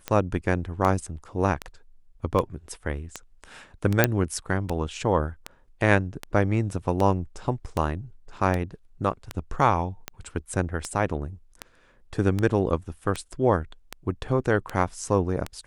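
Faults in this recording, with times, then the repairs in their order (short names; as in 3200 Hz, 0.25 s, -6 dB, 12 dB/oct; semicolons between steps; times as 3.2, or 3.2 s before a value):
tick 78 rpm -13 dBFS
4.04 pop -2 dBFS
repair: de-click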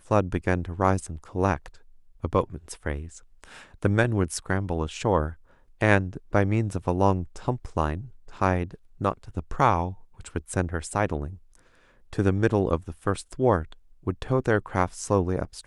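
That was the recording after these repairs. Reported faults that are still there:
none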